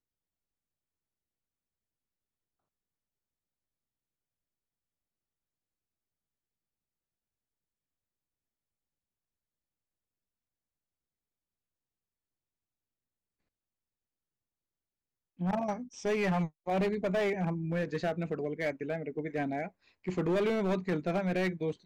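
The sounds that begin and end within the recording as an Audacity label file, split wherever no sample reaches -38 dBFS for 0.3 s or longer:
15.410000	19.680000	sound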